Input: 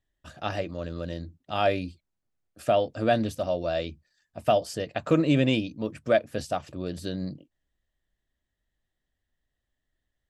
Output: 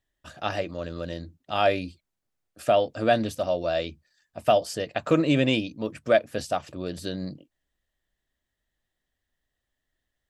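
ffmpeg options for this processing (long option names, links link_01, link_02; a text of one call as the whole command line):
ffmpeg -i in.wav -af "lowshelf=frequency=290:gain=-5.5,volume=3dB" out.wav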